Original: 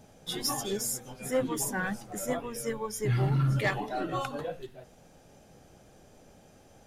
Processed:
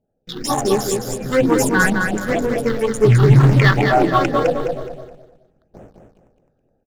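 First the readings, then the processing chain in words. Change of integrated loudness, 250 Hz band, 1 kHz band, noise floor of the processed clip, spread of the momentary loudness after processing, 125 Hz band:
+15.0 dB, +16.5 dB, +16.0 dB, -67 dBFS, 13 LU, +15.5 dB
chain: local Wiener filter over 41 samples; gate with hold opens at -46 dBFS; bass shelf 64 Hz +9.5 dB; hum notches 50/100/150/200/250/300 Hz; level rider gain up to 10 dB; in parallel at -7.5 dB: companded quantiser 4-bit; on the sum: overdrive pedal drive 15 dB, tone 2.6 kHz, clips at -4 dBFS; phase shifter stages 6, 2.1 Hz, lowest notch 610–4400 Hz; on a send: feedback delay 210 ms, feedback 31%, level -5 dB; on the sum: trim +2.5 dB

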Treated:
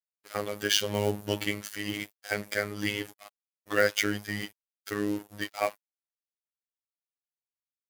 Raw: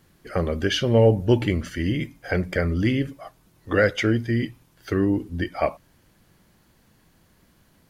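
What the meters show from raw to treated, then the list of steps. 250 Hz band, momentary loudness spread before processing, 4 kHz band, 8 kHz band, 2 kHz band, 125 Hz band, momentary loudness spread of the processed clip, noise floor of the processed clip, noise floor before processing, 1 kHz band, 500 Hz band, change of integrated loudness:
-11.0 dB, 10 LU, +0.5 dB, +6.0 dB, -2.5 dB, -16.0 dB, 11 LU, under -85 dBFS, -61 dBFS, -4.5 dB, -8.5 dB, -7.0 dB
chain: crossover distortion -39.5 dBFS; RIAA curve recording; robot voice 103 Hz; trim -1.5 dB

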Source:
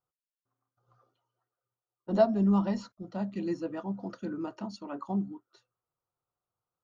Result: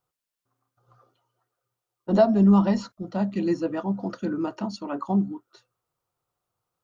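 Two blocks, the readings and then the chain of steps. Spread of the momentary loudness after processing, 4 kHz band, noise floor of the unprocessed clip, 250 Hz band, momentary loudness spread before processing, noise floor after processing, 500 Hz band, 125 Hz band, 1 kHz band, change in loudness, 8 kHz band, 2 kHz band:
15 LU, +7.5 dB, under -85 dBFS, +8.0 dB, 15 LU, under -85 dBFS, +5.5 dB, +8.0 dB, +6.5 dB, +7.5 dB, no reading, +7.0 dB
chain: loudness maximiser +16 dB; trim -8 dB

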